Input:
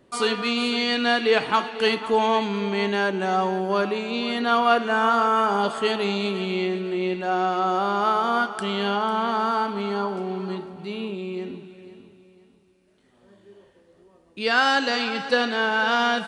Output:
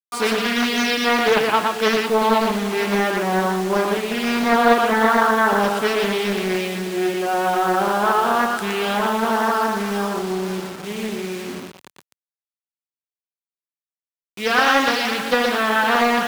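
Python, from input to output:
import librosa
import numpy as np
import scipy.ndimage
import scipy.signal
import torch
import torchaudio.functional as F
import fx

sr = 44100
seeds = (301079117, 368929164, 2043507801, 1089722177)

y = fx.quant_dither(x, sr, seeds[0], bits=6, dither='none')
y = scipy.signal.sosfilt(scipy.signal.butter(2, 92.0, 'highpass', fs=sr, output='sos'), y)
y = y + 10.0 ** (-3.5 / 20.0) * np.pad(y, (int(118 * sr / 1000.0), 0))[:len(y)]
y = fx.doppler_dist(y, sr, depth_ms=0.47)
y = y * 10.0 ** (2.0 / 20.0)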